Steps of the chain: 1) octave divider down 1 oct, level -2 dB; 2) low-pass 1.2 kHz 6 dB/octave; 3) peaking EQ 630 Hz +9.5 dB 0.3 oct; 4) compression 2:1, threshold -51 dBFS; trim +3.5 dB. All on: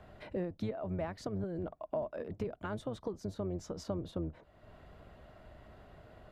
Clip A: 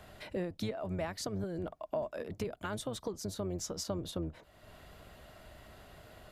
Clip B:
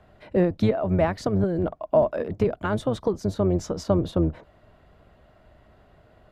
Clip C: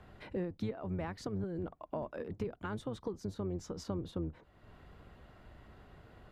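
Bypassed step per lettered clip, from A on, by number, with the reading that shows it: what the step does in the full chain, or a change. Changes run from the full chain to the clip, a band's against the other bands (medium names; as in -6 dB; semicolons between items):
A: 2, 8 kHz band +12.5 dB; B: 4, mean gain reduction 11.5 dB; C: 3, 500 Hz band -2.5 dB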